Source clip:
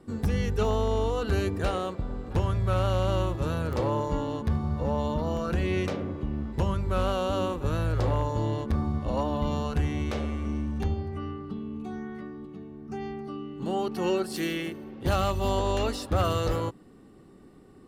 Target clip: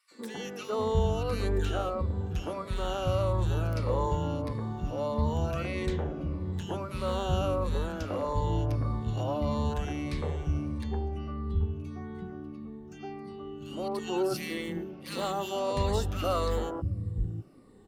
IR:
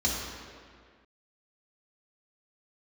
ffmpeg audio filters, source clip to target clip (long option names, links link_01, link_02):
-filter_complex "[0:a]afftfilt=real='re*pow(10,8/40*sin(2*PI*(0.92*log(max(b,1)*sr/1024/100)/log(2)-(-1.6)*(pts-256)/sr)))':imag='im*pow(10,8/40*sin(2*PI*(0.92*log(max(b,1)*sr/1024/100)/log(2)-(-1.6)*(pts-256)/sr)))':win_size=1024:overlap=0.75,acrossover=split=240|1600[link_01][link_02][link_03];[link_02]adelay=110[link_04];[link_01]adelay=710[link_05];[link_05][link_04][link_03]amix=inputs=3:normalize=0,volume=-2.5dB"